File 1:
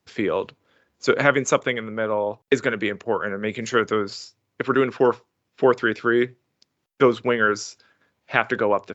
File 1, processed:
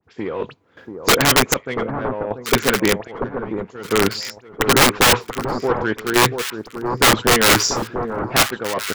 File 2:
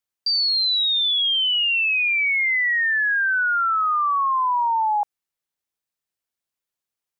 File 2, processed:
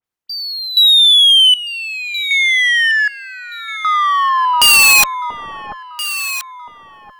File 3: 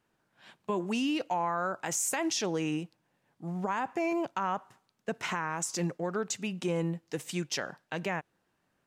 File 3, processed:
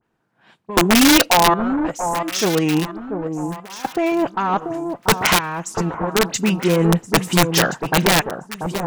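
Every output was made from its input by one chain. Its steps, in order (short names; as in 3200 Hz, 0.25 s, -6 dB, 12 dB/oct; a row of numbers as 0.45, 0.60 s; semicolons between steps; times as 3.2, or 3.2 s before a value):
high shelf 2400 Hz -9 dB; notch 580 Hz, Q 12; reverse; compressor 6:1, threshold -32 dBFS; reverse; dispersion highs, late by 44 ms, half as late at 2900 Hz; added harmonics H 2 -18 dB, 3 -35 dB, 7 -27 dB, 8 -34 dB, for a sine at -20.5 dBFS; random-step tremolo 1.3 Hz, depth 95%; wrapped overs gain 31.5 dB; on a send: echo with dull and thin repeats by turns 0.687 s, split 1200 Hz, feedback 51%, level -7 dB; on the sum: normalise peaks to -3 dBFS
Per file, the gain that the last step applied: +25.5, +27.0, +25.5 dB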